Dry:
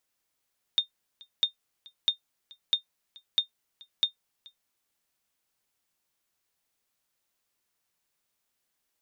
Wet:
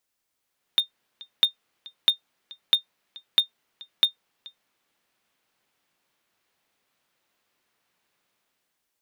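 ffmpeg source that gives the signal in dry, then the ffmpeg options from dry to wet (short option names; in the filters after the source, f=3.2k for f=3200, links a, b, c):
-f lavfi -i "aevalsrc='0.2*(sin(2*PI*3650*mod(t,0.65))*exp(-6.91*mod(t,0.65)/0.11)+0.0531*sin(2*PI*3650*max(mod(t,0.65)-0.43,0))*exp(-6.91*max(mod(t,0.65)-0.43,0)/0.11))':d=3.9:s=44100"
-filter_complex "[0:a]acrossover=split=120|4000[a][b][c];[b]dynaudnorm=f=150:g=9:m=10.5dB[d];[c]aeval=exprs='(mod(44.7*val(0)+1,2)-1)/44.7':c=same[e];[a][d][e]amix=inputs=3:normalize=0"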